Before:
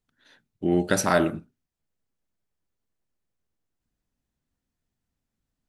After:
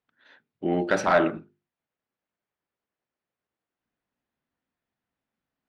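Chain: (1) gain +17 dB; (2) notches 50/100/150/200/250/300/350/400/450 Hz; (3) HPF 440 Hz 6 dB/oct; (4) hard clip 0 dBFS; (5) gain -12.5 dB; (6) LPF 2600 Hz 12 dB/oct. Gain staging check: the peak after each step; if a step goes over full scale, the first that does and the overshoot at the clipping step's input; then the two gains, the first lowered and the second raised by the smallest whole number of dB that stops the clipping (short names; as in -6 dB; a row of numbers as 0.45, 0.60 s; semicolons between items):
+11.0, +10.5, +9.0, 0.0, -12.5, -12.0 dBFS; step 1, 9.0 dB; step 1 +8 dB, step 5 -3.5 dB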